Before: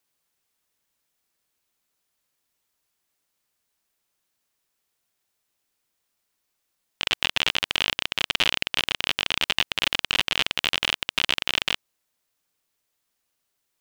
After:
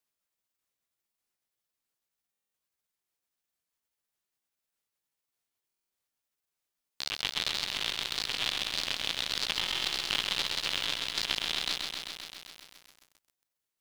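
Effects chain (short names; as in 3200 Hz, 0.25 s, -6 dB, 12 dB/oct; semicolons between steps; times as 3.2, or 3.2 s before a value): repeated pitch sweeps +7 st, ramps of 0.592 s; stuck buffer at 2.31/5.67/9.61, samples 1024, times 9; lo-fi delay 0.131 s, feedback 80%, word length 7-bit, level -5 dB; gain -8 dB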